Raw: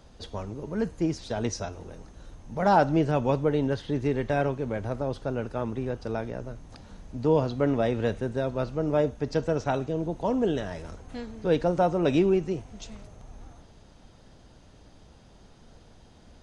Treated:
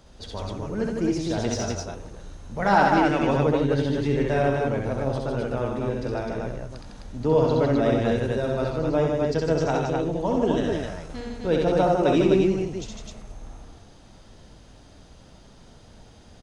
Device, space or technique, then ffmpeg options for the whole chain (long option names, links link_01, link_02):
exciter from parts: -filter_complex "[0:a]asettb=1/sr,asplit=3[link_01][link_02][link_03];[link_01]atrim=end=2.624[link_04];[link_02]atrim=start=2.62:end=3.27,asetpts=PTS-STARTPTS,afade=type=in:duration=0.004:curve=qsin,afade=type=out:start_time=0.646:duration=0.004:curve=qsin,equalizer=frequency=125:width_type=o:width=1:gain=-9,equalizer=frequency=250:width_type=o:width=1:gain=3,equalizer=frequency=500:width_type=o:width=1:gain=-4,equalizer=frequency=2000:width_type=o:width=1:gain=8[link_05];[link_03]atrim=start=3.266[link_06];[link_04][link_05]acrossfade=duration=0.004:curve1=hsin:curve2=qsin[link_07];[link_07][link_06]acrossfade=duration=0.004:curve1=qsin:curve2=hsin,asplit=2[link_08][link_09];[link_09]highpass=frequency=4000:poles=1,asoftclip=type=tanh:threshold=-35.5dB,volume=-8dB[link_10];[link_08][link_10]amix=inputs=2:normalize=0,aecho=1:1:65|86|153|257:0.708|0.316|0.596|0.708"